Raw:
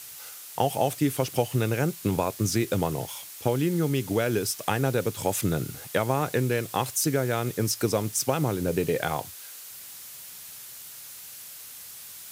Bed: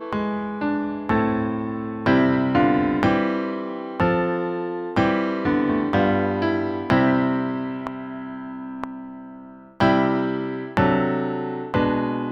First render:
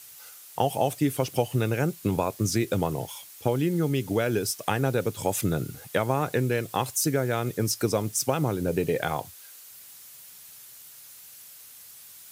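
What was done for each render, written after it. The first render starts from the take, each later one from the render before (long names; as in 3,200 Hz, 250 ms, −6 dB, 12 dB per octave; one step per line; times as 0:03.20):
broadband denoise 6 dB, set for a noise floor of −43 dBFS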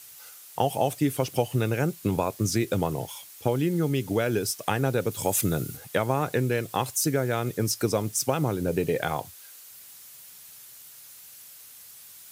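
0:05.11–0:05.77: high-shelf EQ 6,100 Hz +7 dB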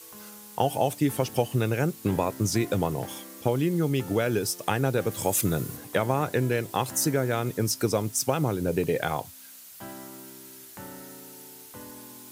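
mix in bed −24.5 dB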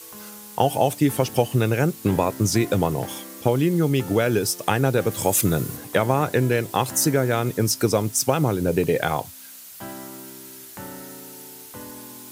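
level +5 dB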